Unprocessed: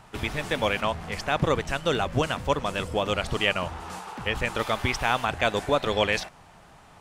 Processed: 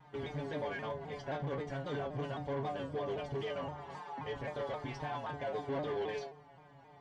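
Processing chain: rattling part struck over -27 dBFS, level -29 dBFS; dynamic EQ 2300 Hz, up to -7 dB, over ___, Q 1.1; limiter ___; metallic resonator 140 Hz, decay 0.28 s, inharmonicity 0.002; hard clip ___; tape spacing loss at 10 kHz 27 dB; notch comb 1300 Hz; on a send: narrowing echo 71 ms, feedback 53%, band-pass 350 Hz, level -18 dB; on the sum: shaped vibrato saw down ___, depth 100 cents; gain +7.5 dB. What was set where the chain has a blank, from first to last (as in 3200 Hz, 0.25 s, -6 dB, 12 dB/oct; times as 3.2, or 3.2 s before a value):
-40 dBFS, -18 dBFS, -39 dBFS, 3.8 Hz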